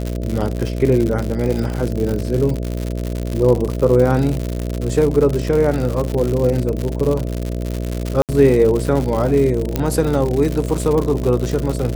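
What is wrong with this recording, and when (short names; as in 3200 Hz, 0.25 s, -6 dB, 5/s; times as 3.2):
buzz 60 Hz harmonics 11 -23 dBFS
crackle 130/s -20 dBFS
8.22–8.29 gap 68 ms
9.76 pop -4 dBFS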